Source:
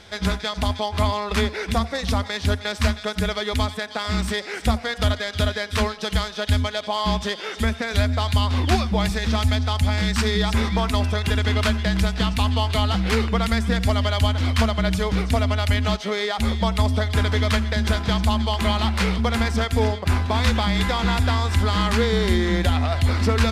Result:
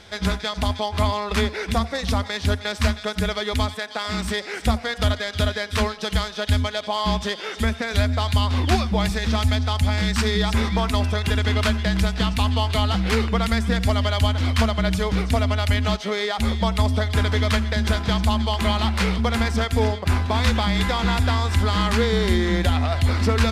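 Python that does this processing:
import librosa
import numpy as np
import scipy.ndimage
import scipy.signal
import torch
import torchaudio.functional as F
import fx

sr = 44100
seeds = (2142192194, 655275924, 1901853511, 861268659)

y = fx.highpass(x, sr, hz=fx.line((3.74, 380.0), (4.24, 140.0)), slope=6, at=(3.74, 4.24), fade=0.02)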